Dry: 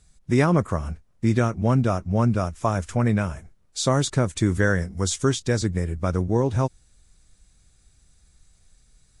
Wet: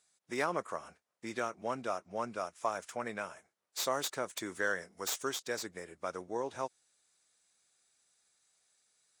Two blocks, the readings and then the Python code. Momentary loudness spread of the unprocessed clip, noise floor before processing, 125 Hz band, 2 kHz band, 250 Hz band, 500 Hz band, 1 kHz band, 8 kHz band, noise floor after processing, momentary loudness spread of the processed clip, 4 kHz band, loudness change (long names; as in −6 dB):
6 LU, −60 dBFS, −33.0 dB, −8.0 dB, −21.0 dB, −12.0 dB, −8.5 dB, −9.5 dB, below −85 dBFS, 9 LU, −8.5 dB, −14.5 dB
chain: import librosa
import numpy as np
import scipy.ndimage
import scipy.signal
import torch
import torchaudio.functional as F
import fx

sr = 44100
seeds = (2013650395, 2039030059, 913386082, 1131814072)

y = fx.tracing_dist(x, sr, depth_ms=0.052)
y = scipy.signal.sosfilt(scipy.signal.butter(2, 540.0, 'highpass', fs=sr, output='sos'), y)
y = y * 10.0 ** (-8.0 / 20.0)